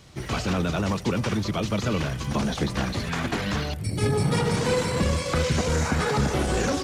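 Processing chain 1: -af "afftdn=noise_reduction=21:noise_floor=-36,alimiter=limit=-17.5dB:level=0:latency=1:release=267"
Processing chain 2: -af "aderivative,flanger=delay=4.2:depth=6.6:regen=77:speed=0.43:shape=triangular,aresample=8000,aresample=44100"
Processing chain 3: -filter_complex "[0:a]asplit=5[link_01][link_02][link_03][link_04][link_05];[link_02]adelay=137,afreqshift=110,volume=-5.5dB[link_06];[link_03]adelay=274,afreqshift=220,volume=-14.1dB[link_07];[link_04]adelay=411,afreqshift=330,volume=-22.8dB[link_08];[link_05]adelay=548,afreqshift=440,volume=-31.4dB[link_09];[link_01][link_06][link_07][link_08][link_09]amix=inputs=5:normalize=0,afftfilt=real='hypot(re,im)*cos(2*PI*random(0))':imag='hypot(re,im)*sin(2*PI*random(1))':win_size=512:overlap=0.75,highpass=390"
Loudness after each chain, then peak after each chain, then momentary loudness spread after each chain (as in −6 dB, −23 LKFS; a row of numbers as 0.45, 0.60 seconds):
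−28.5, −48.0, −33.5 LKFS; −17.5, −33.5, −17.5 dBFS; 3, 4, 5 LU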